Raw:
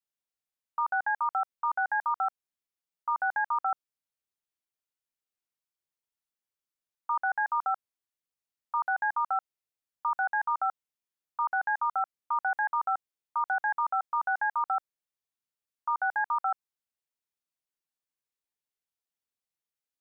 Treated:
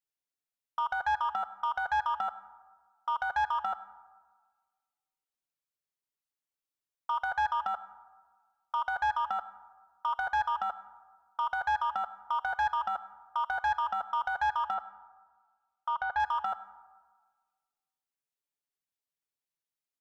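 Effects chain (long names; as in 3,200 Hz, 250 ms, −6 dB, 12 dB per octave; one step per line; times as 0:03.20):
comb filter 7.1 ms, depth 48%
leveller curve on the samples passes 1
0:14.74–0:16.20: high-frequency loss of the air 130 metres
convolution reverb RT60 1.5 s, pre-delay 47 ms, DRR 16 dB
level −2 dB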